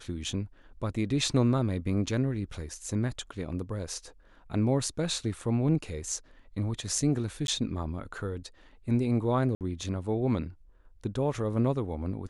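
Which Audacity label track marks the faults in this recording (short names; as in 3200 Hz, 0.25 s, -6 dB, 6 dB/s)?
7.470000	7.480000	gap
9.550000	9.610000	gap 58 ms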